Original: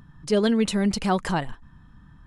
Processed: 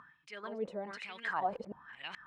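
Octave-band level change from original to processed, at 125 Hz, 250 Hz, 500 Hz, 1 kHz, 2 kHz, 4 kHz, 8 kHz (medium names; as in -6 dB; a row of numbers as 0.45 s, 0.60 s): -25.5 dB, -24.5 dB, -15.0 dB, -7.5 dB, -6.5 dB, -15.5 dB, under -25 dB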